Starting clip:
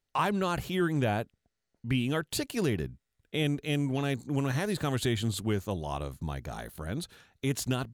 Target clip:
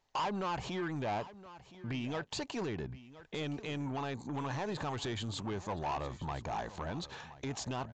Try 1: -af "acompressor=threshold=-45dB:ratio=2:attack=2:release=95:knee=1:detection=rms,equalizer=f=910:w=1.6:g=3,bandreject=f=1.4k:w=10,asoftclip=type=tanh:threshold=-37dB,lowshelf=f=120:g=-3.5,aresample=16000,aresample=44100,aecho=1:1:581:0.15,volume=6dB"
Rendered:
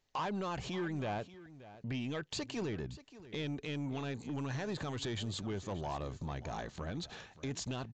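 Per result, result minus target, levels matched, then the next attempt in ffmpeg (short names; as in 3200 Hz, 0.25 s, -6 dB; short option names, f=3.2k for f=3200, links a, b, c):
echo 0.438 s early; 1000 Hz band -3.5 dB
-af "acompressor=threshold=-45dB:ratio=2:attack=2:release=95:knee=1:detection=rms,equalizer=f=910:w=1.6:g=3,bandreject=f=1.4k:w=10,asoftclip=type=tanh:threshold=-37dB,lowshelf=f=120:g=-3.5,aresample=16000,aresample=44100,aecho=1:1:1019:0.15,volume=6dB"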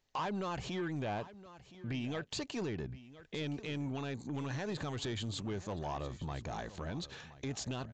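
1000 Hz band -3.5 dB
-af "acompressor=threshold=-45dB:ratio=2:attack=2:release=95:knee=1:detection=rms,equalizer=f=910:w=1.6:g=13,bandreject=f=1.4k:w=10,asoftclip=type=tanh:threshold=-37dB,lowshelf=f=120:g=-3.5,aresample=16000,aresample=44100,aecho=1:1:1019:0.15,volume=6dB"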